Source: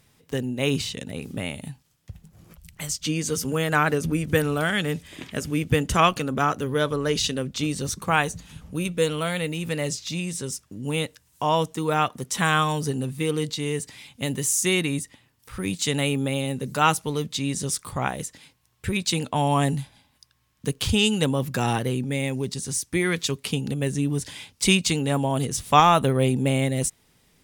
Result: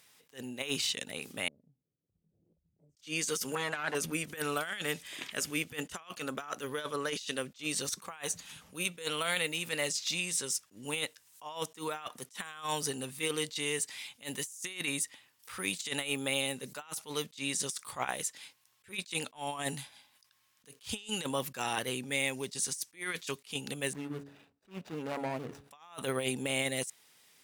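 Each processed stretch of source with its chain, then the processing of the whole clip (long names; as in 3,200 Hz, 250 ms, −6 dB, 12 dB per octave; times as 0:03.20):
0:01.48–0:02.97: inverse Chebyshev low-pass filter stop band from 1,200 Hz, stop band 50 dB + downward compressor 2 to 1, threshold −58 dBFS
0:03.55–0:03.95: low-pass filter 10,000 Hz + high-shelf EQ 4,900 Hz −5.5 dB + saturating transformer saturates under 1,100 Hz
0:23.93–0:25.71: running median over 41 samples + high-shelf EQ 3,100 Hz −12 dB + hum removal 140.6 Hz, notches 5
whole clip: high-pass filter 1,300 Hz 6 dB per octave; compressor whose output falls as the input rises −32 dBFS, ratio −0.5; level that may rise only so fast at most 260 dB per second; level −1.5 dB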